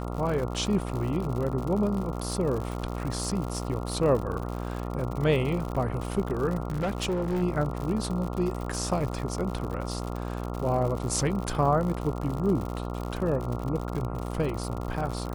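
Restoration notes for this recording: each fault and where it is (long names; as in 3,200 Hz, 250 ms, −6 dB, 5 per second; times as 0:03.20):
mains buzz 60 Hz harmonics 23 −33 dBFS
surface crackle 93 per second −32 dBFS
0:06.68–0:07.43: clipping −24 dBFS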